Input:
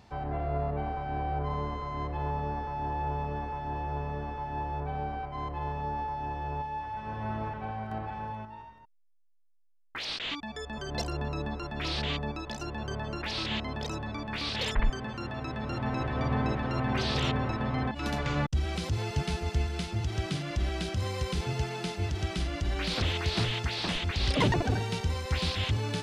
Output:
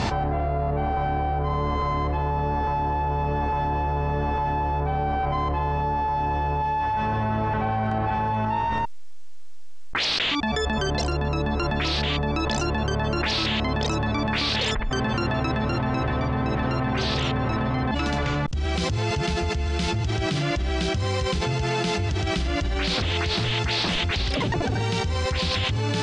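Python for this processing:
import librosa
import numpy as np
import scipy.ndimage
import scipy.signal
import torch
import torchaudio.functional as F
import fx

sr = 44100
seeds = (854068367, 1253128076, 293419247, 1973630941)

y = scipy.signal.sosfilt(scipy.signal.butter(4, 8200.0, 'lowpass', fs=sr, output='sos'), x)
y = fx.env_flatten(y, sr, amount_pct=100)
y = y * librosa.db_to_amplitude(-4.0)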